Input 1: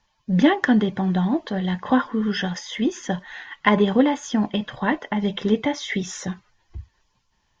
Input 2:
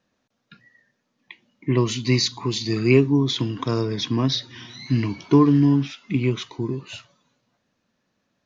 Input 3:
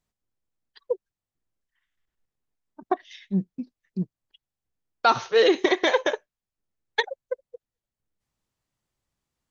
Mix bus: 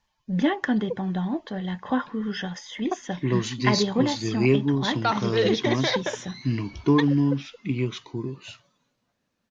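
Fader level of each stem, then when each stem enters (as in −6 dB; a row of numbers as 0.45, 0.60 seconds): −6.0, −4.5, −5.0 decibels; 0.00, 1.55, 0.00 seconds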